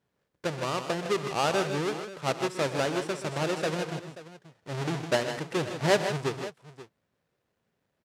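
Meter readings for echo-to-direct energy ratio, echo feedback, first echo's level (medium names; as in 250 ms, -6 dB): -6.5 dB, no regular repeats, -18.0 dB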